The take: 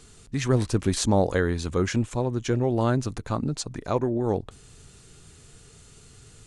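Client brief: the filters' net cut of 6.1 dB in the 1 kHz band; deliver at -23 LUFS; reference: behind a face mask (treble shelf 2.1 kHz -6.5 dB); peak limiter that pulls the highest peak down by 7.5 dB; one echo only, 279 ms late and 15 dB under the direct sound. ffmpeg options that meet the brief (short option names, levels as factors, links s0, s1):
-af "equalizer=f=1000:t=o:g=-7,alimiter=limit=0.141:level=0:latency=1,highshelf=f=2100:g=-6.5,aecho=1:1:279:0.178,volume=2"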